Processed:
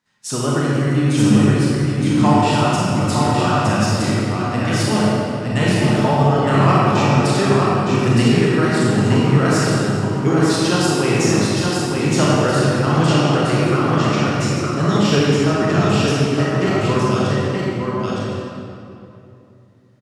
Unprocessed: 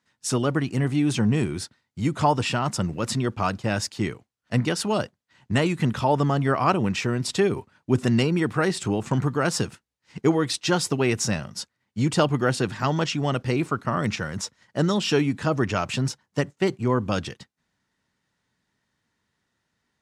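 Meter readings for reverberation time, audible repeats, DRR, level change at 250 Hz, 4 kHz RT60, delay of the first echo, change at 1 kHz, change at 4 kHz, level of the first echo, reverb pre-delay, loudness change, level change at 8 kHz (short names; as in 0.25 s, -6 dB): 2.8 s, 1, -8.0 dB, +9.0 dB, 1.8 s, 0.915 s, +8.5 dB, +7.0 dB, -4.0 dB, 24 ms, +8.0 dB, +6.0 dB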